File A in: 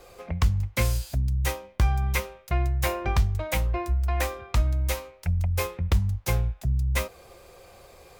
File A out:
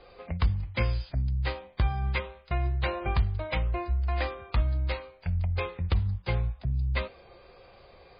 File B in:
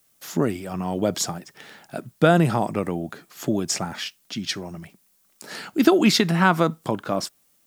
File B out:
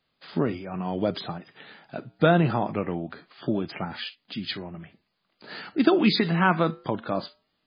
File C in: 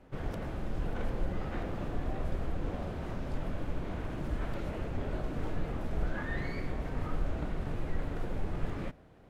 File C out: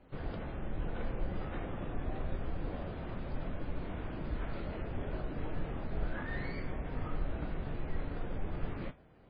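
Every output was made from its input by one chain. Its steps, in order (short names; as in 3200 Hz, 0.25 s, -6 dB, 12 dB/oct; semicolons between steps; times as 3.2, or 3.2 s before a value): flange 0.24 Hz, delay 3.7 ms, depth 4.5 ms, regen -90%; gain +2 dB; MP3 16 kbps 11025 Hz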